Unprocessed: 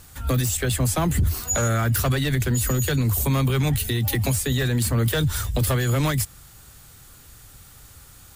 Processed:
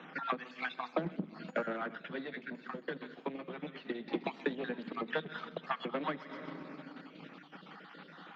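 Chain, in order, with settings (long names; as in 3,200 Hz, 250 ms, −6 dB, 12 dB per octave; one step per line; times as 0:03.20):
time-frequency cells dropped at random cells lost 39%
feedback echo with a high-pass in the loop 128 ms, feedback 43%, high-pass 1,100 Hz, level −11 dB
convolution reverb RT60 2.0 s, pre-delay 6 ms, DRR 11 dB
soft clipping −21 dBFS, distortion −13 dB
downward compressor 10 to 1, threshold −37 dBFS, peak gain reduction 14 dB
Bessel low-pass filter 2,200 Hz, order 8
0:01.95–0:04.07: flanger 1.3 Hz, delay 5.4 ms, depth 3.6 ms, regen −39%
Butterworth high-pass 170 Hz 96 dB per octave
transient designer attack +5 dB, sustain −5 dB
level +6 dB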